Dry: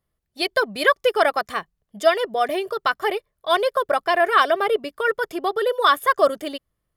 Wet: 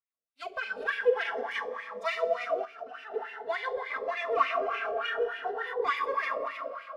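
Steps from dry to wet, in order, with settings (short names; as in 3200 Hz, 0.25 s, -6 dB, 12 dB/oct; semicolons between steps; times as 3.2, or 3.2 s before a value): minimum comb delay 4.4 ms; 1.51–2.1 high shelf 2600 Hz +10.5 dB; Schroeder reverb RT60 3.4 s, combs from 30 ms, DRR 0.5 dB; spectral noise reduction 7 dB; 2.65–3.14 level quantiser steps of 16 dB; wah 3.4 Hz 480–2400 Hz, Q 4.2; 4.7–5.74 doubler 27 ms -3.5 dB; cascading phaser rising 0.46 Hz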